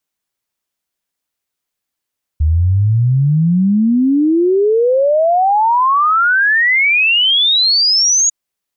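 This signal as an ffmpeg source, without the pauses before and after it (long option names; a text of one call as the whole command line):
ffmpeg -f lavfi -i "aevalsrc='0.355*clip(min(t,5.9-t)/0.01,0,1)*sin(2*PI*74*5.9/log(6800/74)*(exp(log(6800/74)*t/5.9)-1))':duration=5.9:sample_rate=44100" out.wav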